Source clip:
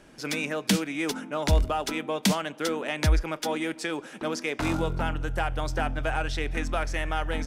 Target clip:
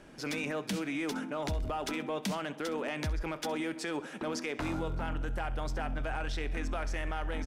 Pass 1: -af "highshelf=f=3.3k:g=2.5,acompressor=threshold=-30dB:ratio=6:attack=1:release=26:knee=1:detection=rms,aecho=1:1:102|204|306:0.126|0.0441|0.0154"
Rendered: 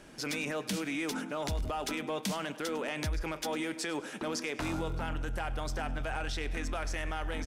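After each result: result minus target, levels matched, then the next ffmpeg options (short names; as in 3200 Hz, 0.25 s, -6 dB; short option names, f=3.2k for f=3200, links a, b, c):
echo 37 ms late; 8000 Hz band +4.0 dB
-af "highshelf=f=3.3k:g=2.5,acompressor=threshold=-30dB:ratio=6:attack=1:release=26:knee=1:detection=rms,aecho=1:1:65|130|195:0.126|0.0441|0.0154"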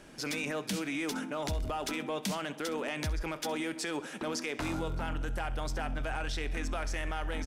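8000 Hz band +4.0 dB
-af "highshelf=f=3.3k:g=-5,acompressor=threshold=-30dB:ratio=6:attack=1:release=26:knee=1:detection=rms,aecho=1:1:65|130|195:0.126|0.0441|0.0154"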